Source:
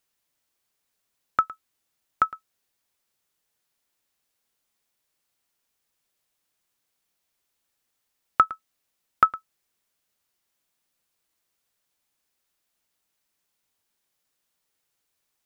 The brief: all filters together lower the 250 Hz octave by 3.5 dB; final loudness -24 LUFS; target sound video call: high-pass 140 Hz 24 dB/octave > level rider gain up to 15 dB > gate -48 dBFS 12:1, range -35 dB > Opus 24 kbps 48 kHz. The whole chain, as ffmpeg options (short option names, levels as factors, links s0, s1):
-af "highpass=f=140:w=0.5412,highpass=f=140:w=1.3066,equalizer=f=250:t=o:g=-4.5,dynaudnorm=m=5.62,agate=range=0.0178:threshold=0.00398:ratio=12,volume=1.19" -ar 48000 -c:a libopus -b:a 24k